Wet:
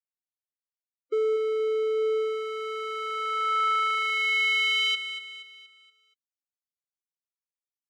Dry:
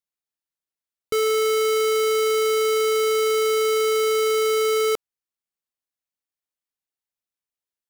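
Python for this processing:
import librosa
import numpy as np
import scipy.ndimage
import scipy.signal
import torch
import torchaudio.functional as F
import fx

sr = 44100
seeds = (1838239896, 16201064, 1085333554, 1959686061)

y = scipy.signal.sosfilt(scipy.signal.butter(4, 81.0, 'highpass', fs=sr, output='sos'), x)
y = fx.low_shelf(y, sr, hz=230.0, db=-6.0)
y = (np.mod(10.0 ** (18.0 / 20.0) * y + 1.0, 2.0) - 1.0) / 10.0 ** (18.0 / 20.0)
y = fx.spec_topn(y, sr, count=32)
y = fx.filter_sweep_bandpass(y, sr, from_hz=410.0, to_hz=6100.0, start_s=1.94, end_s=5.87, q=3.0)
y = fx.echo_feedback(y, sr, ms=237, feedback_pct=44, wet_db=-11.0)
y = y * librosa.db_to_amplitude(5.0)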